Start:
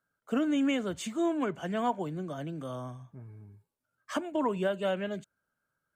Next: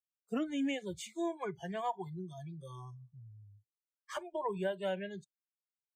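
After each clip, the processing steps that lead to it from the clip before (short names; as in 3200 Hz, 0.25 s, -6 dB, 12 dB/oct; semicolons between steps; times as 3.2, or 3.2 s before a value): spectral noise reduction 29 dB; gain -5 dB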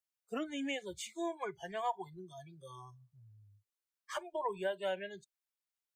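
bell 170 Hz -12 dB 1.7 oct; gain +1.5 dB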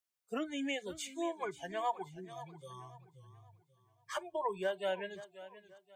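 warbling echo 0.533 s, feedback 35%, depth 87 cents, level -15.5 dB; gain +1 dB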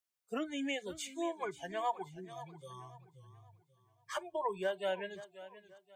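nothing audible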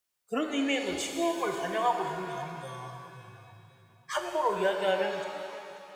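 shimmer reverb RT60 2.1 s, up +7 st, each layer -8 dB, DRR 3.5 dB; gain +7 dB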